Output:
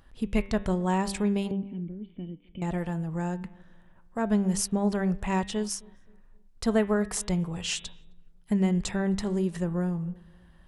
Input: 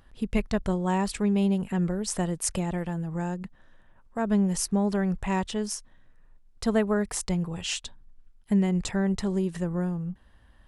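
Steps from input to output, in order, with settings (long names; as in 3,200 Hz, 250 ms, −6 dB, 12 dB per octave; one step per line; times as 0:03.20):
0:01.51–0:02.62: formant resonators in series i
hum removal 98.66 Hz, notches 39
on a send: feedback echo with a low-pass in the loop 263 ms, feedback 41%, low-pass 910 Hz, level −24 dB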